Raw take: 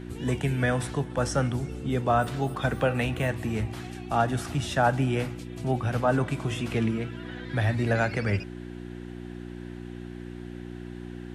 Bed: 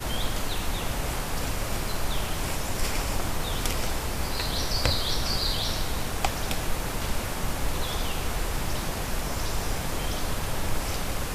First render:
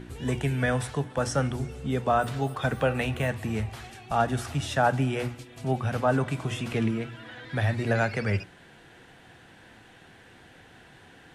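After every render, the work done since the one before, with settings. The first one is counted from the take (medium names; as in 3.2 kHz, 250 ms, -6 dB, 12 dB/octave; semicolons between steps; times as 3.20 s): de-hum 60 Hz, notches 6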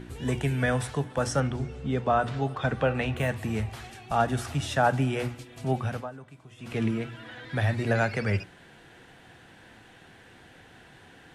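1.40–3.17 s: distance through air 84 m; 5.71–6.96 s: dip -19.5 dB, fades 0.39 s equal-power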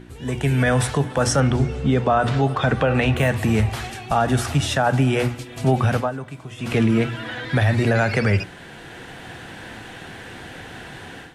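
level rider gain up to 15 dB; peak limiter -9.5 dBFS, peak gain reduction 8 dB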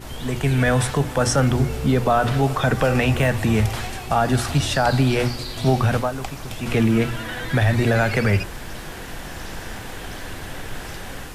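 add bed -6 dB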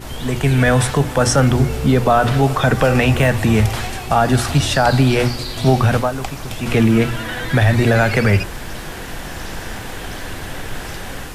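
trim +4.5 dB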